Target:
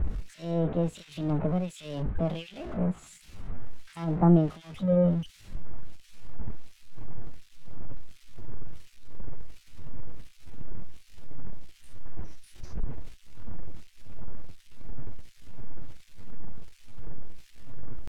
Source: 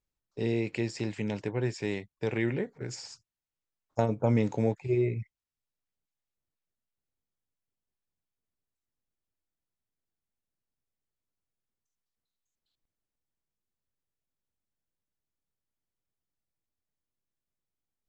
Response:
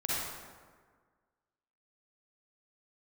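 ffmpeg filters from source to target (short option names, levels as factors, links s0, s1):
-filter_complex "[0:a]aeval=exprs='val(0)+0.5*0.0316*sgn(val(0))':c=same,acrossover=split=1400[s0][s1];[s0]aeval=exprs='val(0)*(1-1/2+1/2*cos(2*PI*1.4*n/s))':c=same[s2];[s1]aeval=exprs='val(0)*(1-1/2-1/2*cos(2*PI*1.4*n/s))':c=same[s3];[s2][s3]amix=inputs=2:normalize=0,asetrate=64194,aresample=44100,atempo=0.686977,aemphasis=mode=reproduction:type=riaa,volume=0.794"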